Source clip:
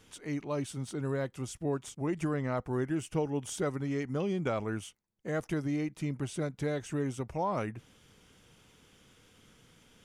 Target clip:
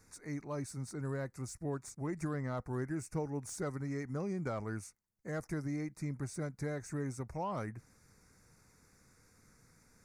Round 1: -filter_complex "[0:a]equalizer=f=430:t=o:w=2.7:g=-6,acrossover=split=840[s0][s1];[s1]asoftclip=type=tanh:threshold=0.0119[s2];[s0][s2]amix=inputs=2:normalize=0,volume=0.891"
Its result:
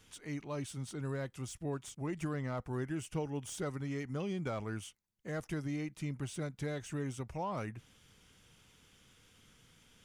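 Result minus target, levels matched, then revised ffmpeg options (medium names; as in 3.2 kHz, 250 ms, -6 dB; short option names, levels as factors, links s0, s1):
4 kHz band +7.0 dB
-filter_complex "[0:a]asuperstop=centerf=3100:order=4:qfactor=1.3,equalizer=f=430:t=o:w=2.7:g=-6,acrossover=split=840[s0][s1];[s1]asoftclip=type=tanh:threshold=0.0119[s2];[s0][s2]amix=inputs=2:normalize=0,volume=0.891"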